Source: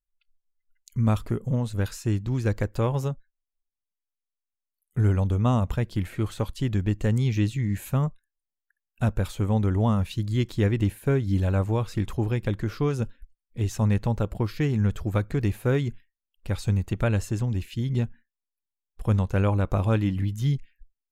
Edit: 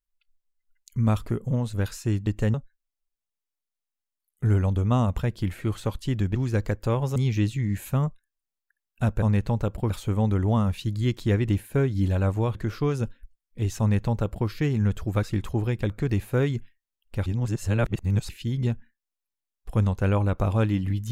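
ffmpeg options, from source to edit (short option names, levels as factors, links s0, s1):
-filter_complex "[0:a]asplit=12[s0][s1][s2][s3][s4][s5][s6][s7][s8][s9][s10][s11];[s0]atrim=end=2.272[s12];[s1]atrim=start=6.888:end=7.162[s13];[s2]atrim=start=3.078:end=6.892[s14];[s3]atrim=start=2.268:end=3.082[s15];[s4]atrim=start=7.158:end=9.222[s16];[s5]atrim=start=13.788:end=14.472[s17];[s6]atrim=start=9.218:end=11.872[s18];[s7]atrim=start=12.538:end=15.222[s19];[s8]atrim=start=11.868:end=12.542[s20];[s9]atrim=start=15.218:end=16.582[s21];[s10]atrim=start=16.578:end=17.612,asetpts=PTS-STARTPTS,areverse[s22];[s11]atrim=start=17.608[s23];[s12][s13]acrossfade=d=0.004:c1=hsin:c2=hsin[s24];[s24][s14]acrossfade=d=0.004:c1=hsin:c2=hsin[s25];[s25][s15]acrossfade=d=0.004:c1=hsin:c2=hsin[s26];[s26][s16]acrossfade=d=0.004:c1=hsin:c2=hsin[s27];[s27][s17]acrossfade=d=0.004:c1=hsin:c2=hsin[s28];[s28][s18]acrossfade=d=0.004:c1=hsin:c2=hsin[s29];[s29][s19]acrossfade=d=0.004:c1=hsin:c2=hsin[s30];[s30][s20]acrossfade=d=0.004:c1=hsin:c2=hsin[s31];[s31][s21]acrossfade=d=0.004:c1=hsin:c2=hsin[s32];[s32][s22]acrossfade=d=0.004:c1=hsin:c2=hsin[s33];[s33][s23]acrossfade=d=0.004:c1=hsin:c2=hsin"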